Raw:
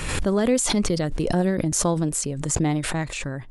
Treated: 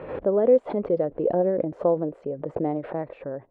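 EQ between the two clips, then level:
resonant band-pass 530 Hz, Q 2.8
high-frequency loss of the air 480 metres
+8.0 dB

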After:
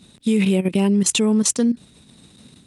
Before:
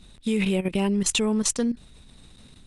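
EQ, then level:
high-pass filter 180 Hz 12 dB per octave
low-shelf EQ 340 Hz +12 dB
high-shelf EQ 4,000 Hz +6.5 dB
0.0 dB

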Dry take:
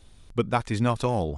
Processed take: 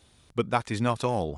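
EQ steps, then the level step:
high-pass filter 71 Hz
low-shelf EQ 320 Hz −4 dB
0.0 dB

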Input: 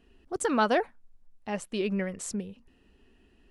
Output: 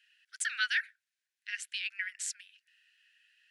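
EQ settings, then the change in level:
Butterworth high-pass 1,500 Hz 96 dB per octave
high-shelf EQ 9,200 Hz −10.5 dB
+5.0 dB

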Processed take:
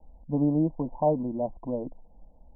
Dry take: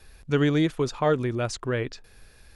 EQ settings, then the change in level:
Butterworth low-pass 980 Hz 96 dB per octave
phaser with its sweep stopped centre 400 Hz, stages 6
+2.0 dB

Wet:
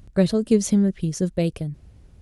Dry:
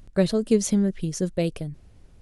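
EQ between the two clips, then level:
high-pass filter 43 Hz
low-shelf EQ 170 Hz +7.5 dB
0.0 dB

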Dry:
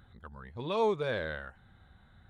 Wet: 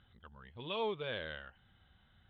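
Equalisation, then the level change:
transistor ladder low-pass 3,300 Hz, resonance 75%
+3.5 dB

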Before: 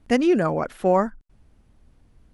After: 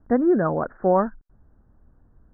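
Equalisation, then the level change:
Butterworth low-pass 1,700 Hz 72 dB per octave
0.0 dB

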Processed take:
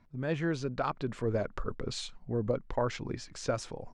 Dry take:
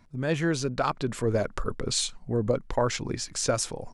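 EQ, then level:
high-frequency loss of the air 56 metres
high-shelf EQ 5,600 Hz −9.5 dB
−5.0 dB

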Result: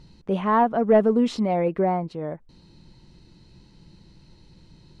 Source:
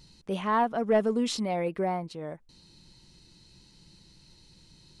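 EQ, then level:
low-pass filter 1,200 Hz 6 dB per octave
+7.5 dB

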